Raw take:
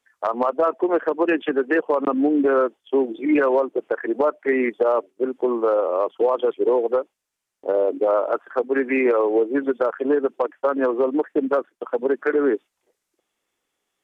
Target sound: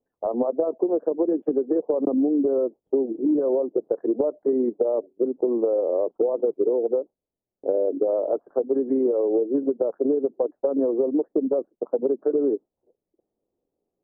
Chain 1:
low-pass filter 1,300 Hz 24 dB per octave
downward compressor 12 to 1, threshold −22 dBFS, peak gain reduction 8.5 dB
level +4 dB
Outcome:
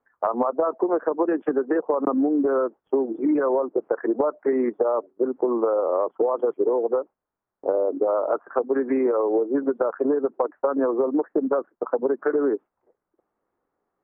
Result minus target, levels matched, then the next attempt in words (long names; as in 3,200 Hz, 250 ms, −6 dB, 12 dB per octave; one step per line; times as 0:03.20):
1,000 Hz band +10.0 dB
low-pass filter 600 Hz 24 dB per octave
downward compressor 12 to 1, threshold −22 dBFS, peak gain reduction 8.5 dB
level +4 dB